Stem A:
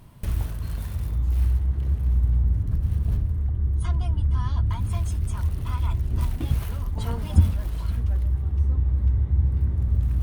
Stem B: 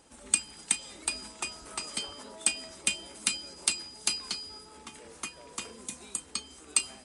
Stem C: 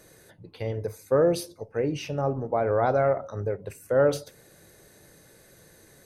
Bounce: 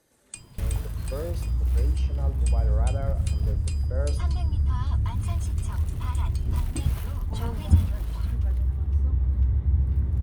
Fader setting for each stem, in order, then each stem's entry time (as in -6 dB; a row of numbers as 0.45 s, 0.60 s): -1.5 dB, -15.0 dB, -14.0 dB; 0.35 s, 0.00 s, 0.00 s